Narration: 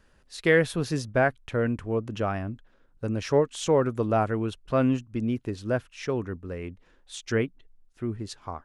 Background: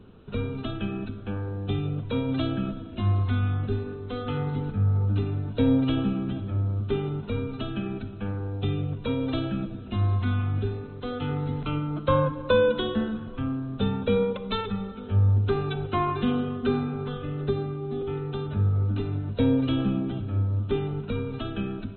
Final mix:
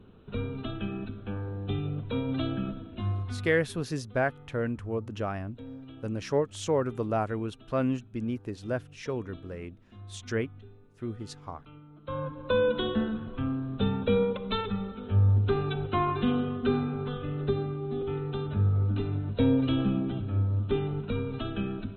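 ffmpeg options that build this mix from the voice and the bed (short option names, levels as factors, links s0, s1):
-filter_complex "[0:a]adelay=3000,volume=0.596[s0];[1:a]volume=7.08,afade=t=out:st=2.78:d=0.88:silence=0.11885,afade=t=in:st=11.97:d=0.91:silence=0.0944061[s1];[s0][s1]amix=inputs=2:normalize=0"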